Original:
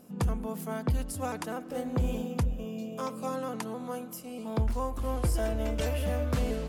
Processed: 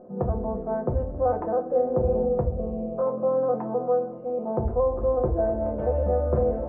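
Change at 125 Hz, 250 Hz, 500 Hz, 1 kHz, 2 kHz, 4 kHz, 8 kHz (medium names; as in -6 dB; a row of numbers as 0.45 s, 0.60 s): +2.0 dB, +3.0 dB, +12.5 dB, +7.0 dB, no reading, under -30 dB, under -35 dB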